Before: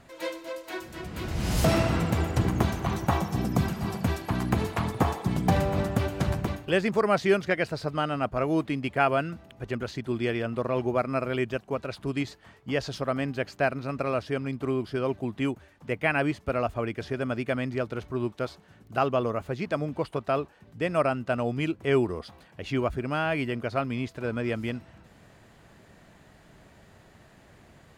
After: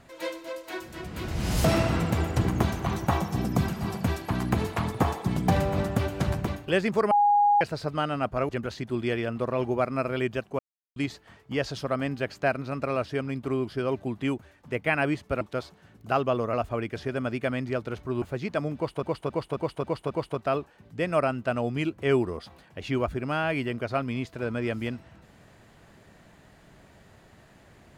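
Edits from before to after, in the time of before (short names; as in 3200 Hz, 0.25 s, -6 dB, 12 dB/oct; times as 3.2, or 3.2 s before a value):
7.11–7.61 bleep 822 Hz -17 dBFS
8.49–9.66 cut
11.76–12.13 mute
18.27–19.39 move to 16.58
19.93–20.2 loop, 6 plays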